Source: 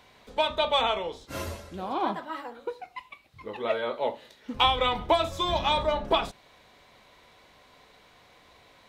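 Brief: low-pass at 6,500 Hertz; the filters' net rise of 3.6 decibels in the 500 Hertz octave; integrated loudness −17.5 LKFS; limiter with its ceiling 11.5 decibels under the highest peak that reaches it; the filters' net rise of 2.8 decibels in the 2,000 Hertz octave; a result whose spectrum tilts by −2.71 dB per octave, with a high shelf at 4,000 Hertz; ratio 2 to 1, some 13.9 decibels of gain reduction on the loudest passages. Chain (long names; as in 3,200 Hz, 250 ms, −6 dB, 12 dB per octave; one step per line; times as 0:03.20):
low-pass filter 6,500 Hz
parametric band 500 Hz +4.5 dB
parametric band 2,000 Hz +4.5 dB
high-shelf EQ 4,000 Hz −3.5 dB
downward compressor 2 to 1, threshold −43 dBFS
level +25 dB
brickwall limiter −7 dBFS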